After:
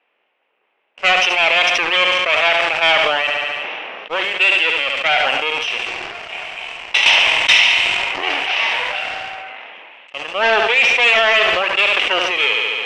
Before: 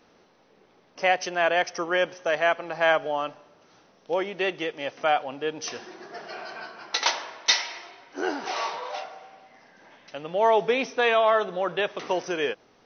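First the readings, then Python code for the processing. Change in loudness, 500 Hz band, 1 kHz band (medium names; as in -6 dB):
+11.5 dB, +3.5 dB, +6.5 dB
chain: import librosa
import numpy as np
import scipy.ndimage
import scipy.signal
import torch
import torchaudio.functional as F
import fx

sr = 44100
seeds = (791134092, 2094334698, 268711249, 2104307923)

p1 = fx.lower_of_two(x, sr, delay_ms=0.33)
p2 = fx.peak_eq(p1, sr, hz=2700.0, db=14.5, octaves=0.91)
p3 = fx.env_lowpass(p2, sr, base_hz=1800.0, full_db=-18.0)
p4 = scipy.signal.sosfilt(scipy.signal.butter(2, 780.0, 'highpass', fs=sr, output='sos'), p3)
p5 = fx.high_shelf(p4, sr, hz=3700.0, db=-9.5)
p6 = fx.leveller(p5, sr, passes=2)
p7 = scipy.signal.sosfilt(scipy.signal.butter(2, 5200.0, 'lowpass', fs=sr, output='sos'), p6)
p8 = p7 + fx.echo_feedback(p7, sr, ms=71, feedback_pct=47, wet_db=-13, dry=0)
p9 = fx.sustainer(p8, sr, db_per_s=20.0)
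y = p9 * librosa.db_to_amplitude(2.0)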